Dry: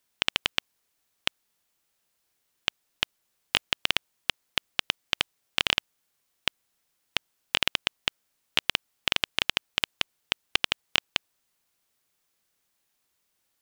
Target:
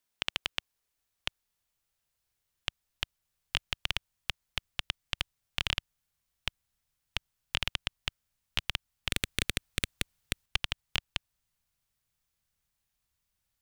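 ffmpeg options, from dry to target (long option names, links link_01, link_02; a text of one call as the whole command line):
ffmpeg -i in.wav -filter_complex "[0:a]asubboost=boost=8.5:cutoff=110,asettb=1/sr,asplit=3[link_01][link_02][link_03];[link_01]atrim=end=9.104[link_04];[link_02]atrim=start=9.1:end=10.46,asetpts=PTS-STARTPTS,afade=type=in:duration=0.004:curve=qsin,afade=type=out:start_time=1.356:duration=0.004:curve=qsin,aeval=exprs='0.841*(cos(1*acos(clip(val(0)/0.841,-1,1)))-cos(1*PI/2))+0.335*(cos(7*acos(clip(val(0)/0.841,-1,1)))-cos(7*PI/2))':channel_layout=same[link_05];[link_03]atrim=start=10.456[link_06];[link_04][link_05]acrossfade=duration=0.004:curve1=hsin:curve2=qsin[link_07];[link_07][link_06]acrossfade=duration=0.004:curve1=qsin:curve2=hsin,volume=-7dB" out.wav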